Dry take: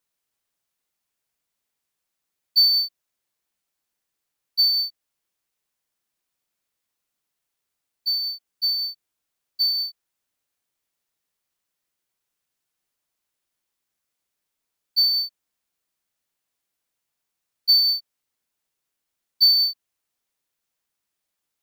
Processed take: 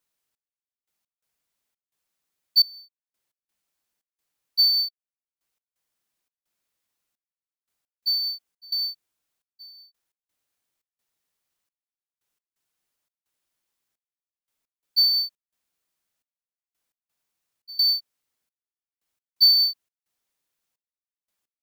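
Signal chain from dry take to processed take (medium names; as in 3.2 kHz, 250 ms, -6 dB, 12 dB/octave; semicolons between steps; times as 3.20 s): trance gate "xx...x.xxx.xx" 86 bpm -24 dB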